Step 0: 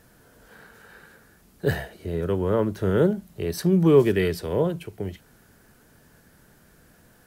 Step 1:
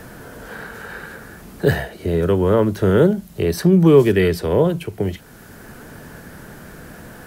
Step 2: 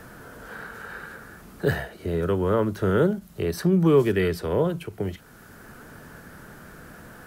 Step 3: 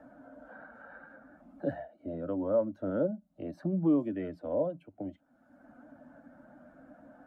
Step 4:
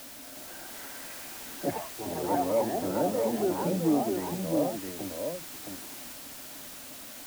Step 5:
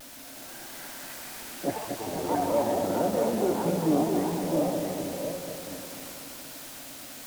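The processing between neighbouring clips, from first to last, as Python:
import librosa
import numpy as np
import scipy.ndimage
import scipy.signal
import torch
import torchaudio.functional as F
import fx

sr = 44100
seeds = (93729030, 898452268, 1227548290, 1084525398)

y1 = fx.band_squash(x, sr, depth_pct=40)
y1 = F.gain(torch.from_numpy(y1), 7.5).numpy()
y2 = fx.peak_eq(y1, sr, hz=1300.0, db=5.5, octaves=0.56)
y2 = fx.end_taper(y2, sr, db_per_s=380.0)
y2 = F.gain(torch.from_numpy(y2), -7.0).numpy()
y3 = fx.bin_expand(y2, sr, power=1.5)
y3 = fx.double_bandpass(y3, sr, hz=410.0, octaves=1.0)
y3 = fx.band_squash(y3, sr, depth_pct=40)
y3 = F.gain(torch.from_numpy(y3), 6.0).numpy()
y4 = fx.dmg_noise_colour(y3, sr, seeds[0], colour='white', level_db=-46.0)
y4 = fx.echo_pitch(y4, sr, ms=355, semitones=4, count=2, db_per_echo=-3.0)
y4 = y4 + 10.0 ** (-4.5 / 20.0) * np.pad(y4, (int(665 * sr / 1000.0), 0))[:len(y4)]
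y5 = fx.reverse_delay_fb(y4, sr, ms=120, feedback_pct=76, wet_db=-5.5)
y5 = fx.vibrato(y5, sr, rate_hz=0.48, depth_cents=23.0)
y5 = fx.doppler_dist(y5, sr, depth_ms=0.17)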